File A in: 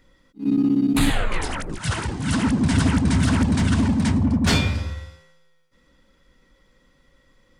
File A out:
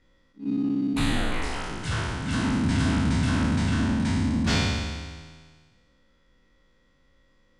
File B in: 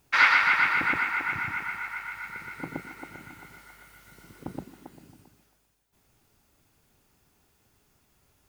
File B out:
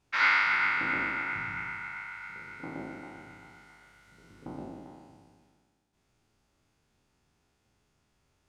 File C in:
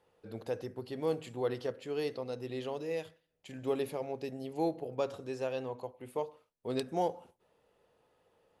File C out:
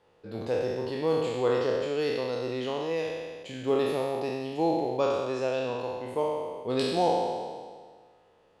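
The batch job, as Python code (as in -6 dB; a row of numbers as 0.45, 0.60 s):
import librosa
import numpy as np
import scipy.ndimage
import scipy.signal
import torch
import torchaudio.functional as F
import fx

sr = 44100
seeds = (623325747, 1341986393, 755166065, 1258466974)

y = fx.spec_trails(x, sr, decay_s=1.71)
y = scipy.signal.sosfilt(scipy.signal.butter(2, 7000.0, 'lowpass', fs=sr, output='sos'), y)
y = y * 10.0 ** (-12 / 20.0) / np.max(np.abs(y))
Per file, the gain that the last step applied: -8.0, -8.5, +4.5 dB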